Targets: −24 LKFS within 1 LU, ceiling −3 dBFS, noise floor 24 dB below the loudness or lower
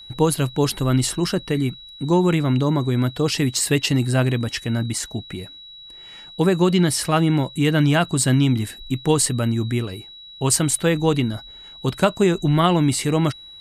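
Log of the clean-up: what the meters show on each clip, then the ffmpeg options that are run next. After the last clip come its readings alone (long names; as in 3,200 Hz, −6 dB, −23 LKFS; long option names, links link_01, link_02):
interfering tone 3,900 Hz; level of the tone −39 dBFS; integrated loudness −20.0 LKFS; sample peak −5.0 dBFS; target loudness −24.0 LKFS
→ -af "bandreject=frequency=3900:width=30"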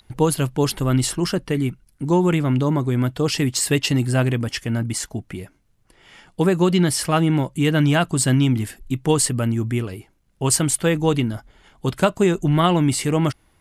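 interfering tone none found; integrated loudness −20.5 LKFS; sample peak −5.0 dBFS; target loudness −24.0 LKFS
→ -af "volume=-3.5dB"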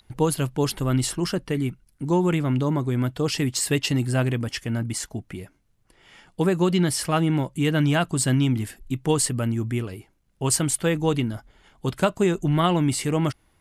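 integrated loudness −24.0 LKFS; sample peak −8.5 dBFS; background noise floor −64 dBFS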